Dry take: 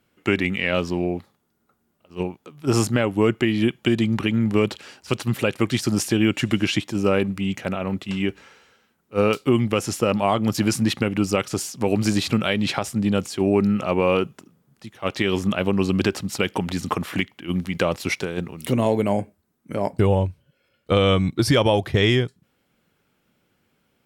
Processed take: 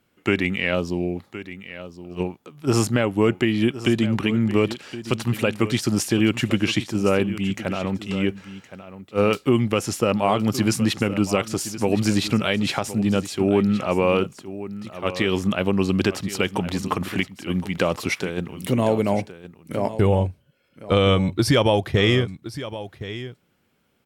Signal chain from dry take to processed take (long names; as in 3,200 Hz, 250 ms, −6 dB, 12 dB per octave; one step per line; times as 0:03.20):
0:00.74–0:01.15: parametric band 2,500 Hz → 860 Hz −10.5 dB 1.4 octaves
single-tap delay 1,067 ms −14 dB